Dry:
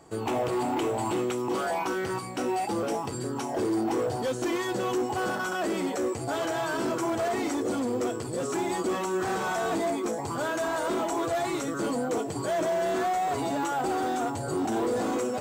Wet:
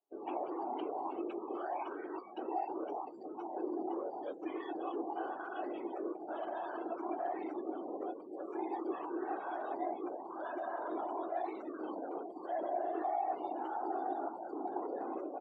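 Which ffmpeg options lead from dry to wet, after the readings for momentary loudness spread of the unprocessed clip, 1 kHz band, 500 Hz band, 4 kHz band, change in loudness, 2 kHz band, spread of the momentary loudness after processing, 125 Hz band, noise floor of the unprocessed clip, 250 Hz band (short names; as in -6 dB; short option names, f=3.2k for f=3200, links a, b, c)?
3 LU, -8.0 dB, -11.5 dB, under -20 dB, -11.0 dB, -17.0 dB, 5 LU, under -30 dB, -34 dBFS, -11.5 dB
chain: -af "aecho=1:1:653:0.119,afftfilt=real='hypot(re,im)*cos(2*PI*random(0))':imag='hypot(re,im)*sin(2*PI*random(1))':win_size=512:overlap=0.75,afftdn=nr=29:nf=-42,highpass=f=330:w=0.5412,highpass=f=330:w=1.3066,equalizer=f=330:t=q:w=4:g=7,equalizer=f=490:t=q:w=4:g=-5,equalizer=f=760:t=q:w=4:g=6,equalizer=f=1.4k:t=q:w=4:g=-4,equalizer=f=2k:t=q:w=4:g=-5,lowpass=f=3.1k:w=0.5412,lowpass=f=3.1k:w=1.3066,volume=-5.5dB"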